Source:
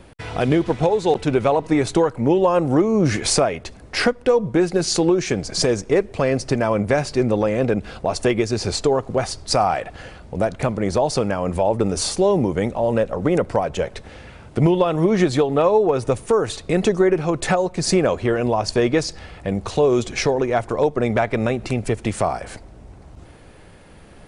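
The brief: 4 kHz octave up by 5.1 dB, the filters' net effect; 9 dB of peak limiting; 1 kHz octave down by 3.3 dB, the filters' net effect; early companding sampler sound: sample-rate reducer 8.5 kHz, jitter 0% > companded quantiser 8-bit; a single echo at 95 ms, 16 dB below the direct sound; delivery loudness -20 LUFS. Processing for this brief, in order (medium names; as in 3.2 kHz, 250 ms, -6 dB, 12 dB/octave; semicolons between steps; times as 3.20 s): peaking EQ 1 kHz -5 dB; peaking EQ 4 kHz +6.5 dB; peak limiter -11 dBFS; delay 95 ms -16 dB; sample-rate reducer 8.5 kHz, jitter 0%; companded quantiser 8-bit; trim +1.5 dB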